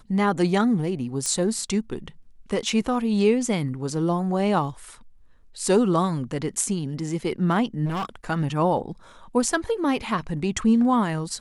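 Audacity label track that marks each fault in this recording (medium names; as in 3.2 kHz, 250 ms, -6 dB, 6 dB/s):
1.260000	1.260000	pop -13 dBFS
7.850000	8.250000	clipped -24.5 dBFS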